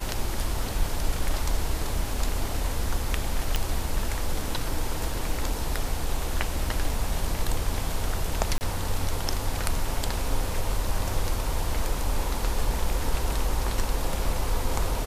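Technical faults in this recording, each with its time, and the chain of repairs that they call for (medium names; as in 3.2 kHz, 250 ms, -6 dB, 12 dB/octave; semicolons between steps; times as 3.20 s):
3.56 s: pop -9 dBFS
8.58–8.61 s: dropout 29 ms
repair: de-click; interpolate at 8.58 s, 29 ms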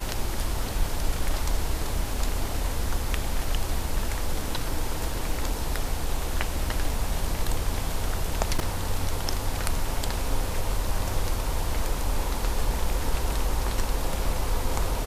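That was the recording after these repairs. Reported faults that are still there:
nothing left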